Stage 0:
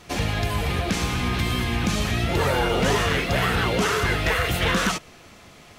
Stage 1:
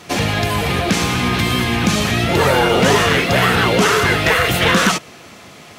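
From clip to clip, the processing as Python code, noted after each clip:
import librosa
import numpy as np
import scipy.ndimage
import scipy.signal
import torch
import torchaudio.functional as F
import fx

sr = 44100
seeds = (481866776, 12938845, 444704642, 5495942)

y = scipy.signal.sosfilt(scipy.signal.butter(2, 110.0, 'highpass', fs=sr, output='sos'), x)
y = y * librosa.db_to_amplitude(8.5)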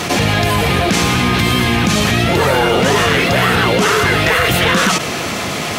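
y = fx.env_flatten(x, sr, amount_pct=70)
y = y * librosa.db_to_amplitude(-1.0)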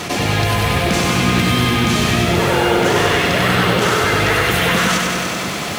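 y = fx.echo_crushed(x, sr, ms=97, feedback_pct=80, bits=6, wet_db=-4.0)
y = y * librosa.db_to_amplitude(-5.0)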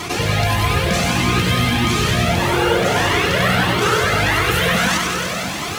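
y = fx.comb_cascade(x, sr, direction='rising', hz=1.6)
y = y * librosa.db_to_amplitude(3.0)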